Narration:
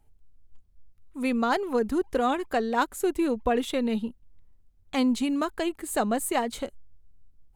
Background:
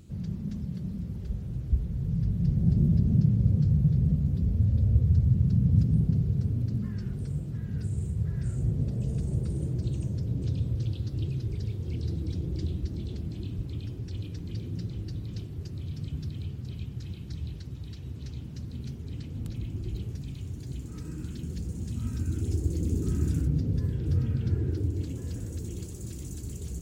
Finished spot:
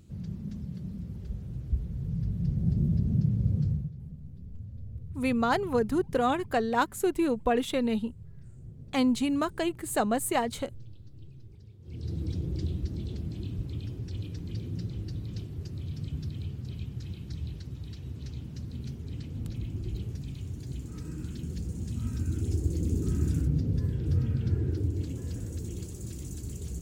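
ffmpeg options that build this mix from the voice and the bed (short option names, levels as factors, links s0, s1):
-filter_complex "[0:a]adelay=4000,volume=0.891[s0];[1:a]volume=5.31,afade=t=out:st=3.66:d=0.25:silence=0.177828,afade=t=in:st=11.81:d=0.41:silence=0.125893[s1];[s0][s1]amix=inputs=2:normalize=0"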